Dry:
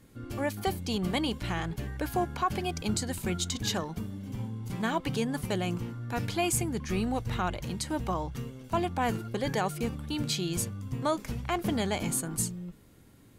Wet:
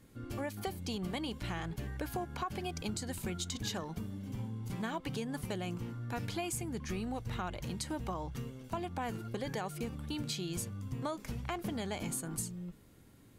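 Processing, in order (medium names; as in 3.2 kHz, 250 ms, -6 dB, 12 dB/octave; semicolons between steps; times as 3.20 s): compression, threshold -31 dBFS, peak gain reduction 8.5 dB; trim -3 dB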